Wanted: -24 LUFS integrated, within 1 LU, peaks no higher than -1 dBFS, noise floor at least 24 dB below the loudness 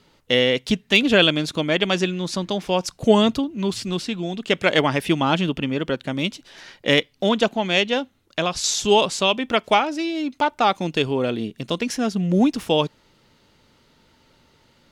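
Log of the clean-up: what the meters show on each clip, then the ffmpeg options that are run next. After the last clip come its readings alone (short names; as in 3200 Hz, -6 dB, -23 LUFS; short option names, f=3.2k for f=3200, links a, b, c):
loudness -21.0 LUFS; peak -3.0 dBFS; loudness target -24.0 LUFS
-> -af "volume=-3dB"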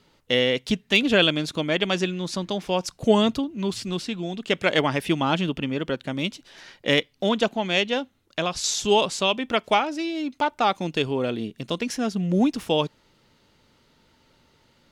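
loudness -24.0 LUFS; peak -6.0 dBFS; noise floor -63 dBFS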